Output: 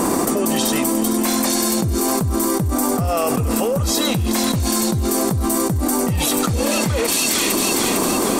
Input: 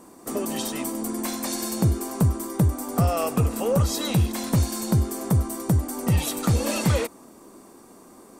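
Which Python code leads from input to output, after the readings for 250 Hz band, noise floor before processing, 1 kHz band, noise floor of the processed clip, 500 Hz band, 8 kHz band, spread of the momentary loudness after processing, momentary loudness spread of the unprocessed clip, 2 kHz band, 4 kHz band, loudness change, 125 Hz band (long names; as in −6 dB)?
+8.0 dB, −49 dBFS, +9.0 dB, −20 dBFS, +8.0 dB, +12.0 dB, 2 LU, 6 LU, +10.5 dB, +11.5 dB, +6.5 dB, −0.5 dB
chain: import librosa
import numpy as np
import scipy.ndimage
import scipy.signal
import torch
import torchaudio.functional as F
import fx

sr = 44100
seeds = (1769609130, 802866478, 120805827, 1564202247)

p1 = x + fx.echo_wet_highpass(x, sr, ms=455, feedback_pct=42, hz=2700.0, wet_db=-9.5, dry=0)
p2 = fx.env_flatten(p1, sr, amount_pct=100)
y = F.gain(torch.from_numpy(p2), -2.5).numpy()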